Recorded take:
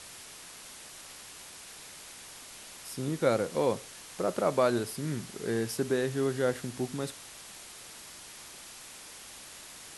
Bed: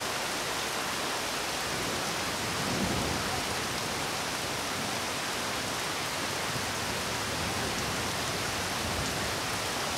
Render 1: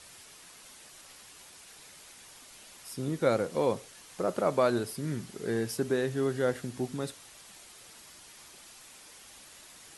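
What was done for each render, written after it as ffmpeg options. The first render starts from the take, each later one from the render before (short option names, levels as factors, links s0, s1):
-af "afftdn=nr=6:nf=-48"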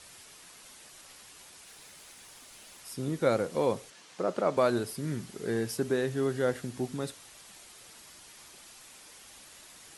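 -filter_complex "[0:a]asettb=1/sr,asplit=3[s0][s1][s2];[s0]atrim=end=1.654[s3];[s1]atrim=start=1.65:end=2.8,asetpts=PTS-STARTPTS,afade=t=in:d=0.004:c=qsin,afade=t=out:st=1.146:d=0.004:c=qsin,acrusher=bits=3:mode=log:mix=0:aa=0.000001[s4];[s2]atrim=start=2.796[s5];[s3][s4]acrossfade=d=0.004:c1=hsin:c2=qsin[s6];[s6][s5]acrossfade=d=0.004:c1=qsin:c2=hsin,asettb=1/sr,asplit=3[s7][s8][s9];[s7]atrim=end=3.904[s10];[s8]atrim=start=3.9:end=4.57,asetpts=PTS-STARTPTS,afade=t=in:d=0.004:c=qsin,afade=t=out:st=0.666:d=0.004:c=qsin,highpass=150,lowpass=6700[s11];[s9]atrim=start=4.566[s12];[s10][s11]acrossfade=d=0.004:c1=hsin:c2=qsin[s13];[s13][s12]acrossfade=d=0.004:c1=qsin:c2=hsin"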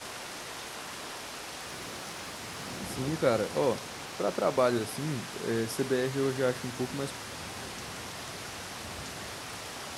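-filter_complex "[1:a]volume=0.355[s0];[0:a][s0]amix=inputs=2:normalize=0"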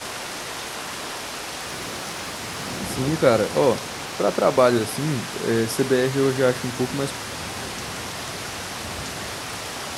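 -af "volume=2.82"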